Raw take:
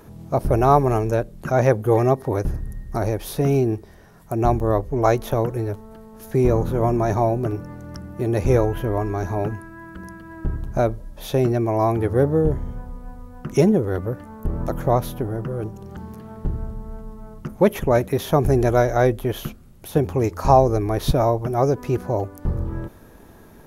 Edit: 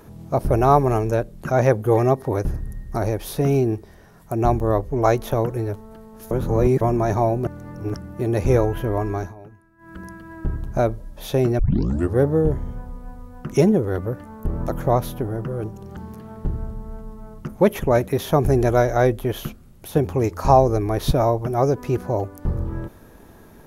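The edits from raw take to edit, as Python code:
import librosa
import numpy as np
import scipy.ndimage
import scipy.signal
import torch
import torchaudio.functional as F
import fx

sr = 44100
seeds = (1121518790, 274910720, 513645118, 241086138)

y = fx.edit(x, sr, fx.reverse_span(start_s=6.31, length_s=0.5),
    fx.reverse_span(start_s=7.47, length_s=0.47),
    fx.fade_down_up(start_s=9.17, length_s=0.78, db=-18.5, fade_s=0.17),
    fx.tape_start(start_s=11.59, length_s=0.55), tone=tone)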